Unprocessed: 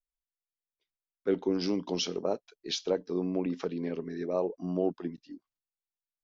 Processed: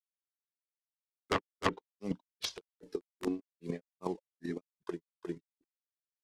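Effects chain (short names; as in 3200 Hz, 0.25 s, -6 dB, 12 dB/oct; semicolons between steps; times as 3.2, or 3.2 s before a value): CVSD 64 kbps; flange 0.46 Hz, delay 0.8 ms, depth 1.9 ms, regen -16%; dynamic EQ 620 Hz, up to -4 dB, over -44 dBFS, Q 1.7; wrapped overs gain 25.5 dB; chopper 8.4 Hz, depth 60%, duty 10%; grains 0.215 s, grains 2.5/s, spray 0.355 s, pitch spread up and down by 0 st; treble ducked by the level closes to 770 Hz, closed at -34 dBFS; gain +12 dB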